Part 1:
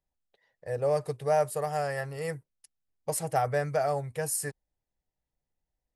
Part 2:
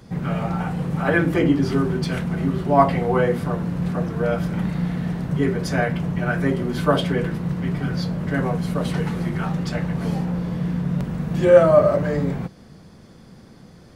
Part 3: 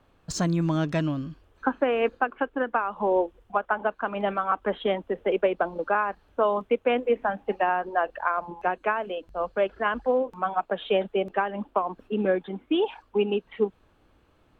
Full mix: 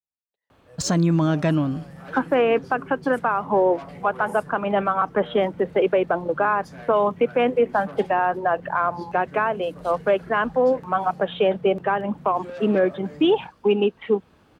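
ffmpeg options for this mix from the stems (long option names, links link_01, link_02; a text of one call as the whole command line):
ffmpeg -i stem1.wav -i stem2.wav -i stem3.wav -filter_complex "[0:a]volume=-18dB[link_01];[1:a]asoftclip=type=tanh:threshold=-16.5dB,adynamicequalizer=threshold=0.00631:dfrequency=3300:dqfactor=0.7:tfrequency=3300:tqfactor=0.7:attack=5:release=100:ratio=0.375:range=3:mode=boostabove:tftype=highshelf,adelay=1000,volume=-17dB[link_02];[2:a]alimiter=limit=-16.5dB:level=0:latency=1:release=18,acontrast=78,adelay=500,volume=-0.5dB[link_03];[link_01][link_02][link_03]amix=inputs=3:normalize=0,highpass=68,adynamicequalizer=threshold=0.0158:dfrequency=2100:dqfactor=0.7:tfrequency=2100:tqfactor=0.7:attack=5:release=100:ratio=0.375:range=2.5:mode=cutabove:tftype=highshelf" out.wav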